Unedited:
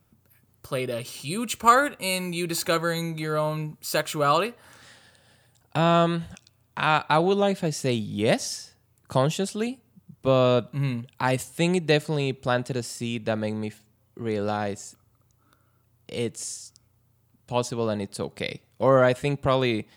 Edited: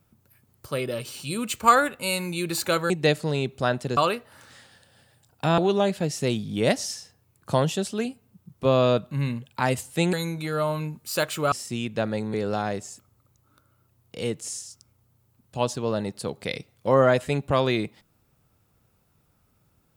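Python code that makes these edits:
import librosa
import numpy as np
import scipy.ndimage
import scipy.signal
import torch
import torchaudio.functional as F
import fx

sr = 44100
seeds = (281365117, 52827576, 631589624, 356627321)

y = fx.edit(x, sr, fx.swap(start_s=2.9, length_s=1.39, other_s=11.75, other_length_s=1.07),
    fx.cut(start_s=5.9, length_s=1.3),
    fx.cut(start_s=13.64, length_s=0.65), tone=tone)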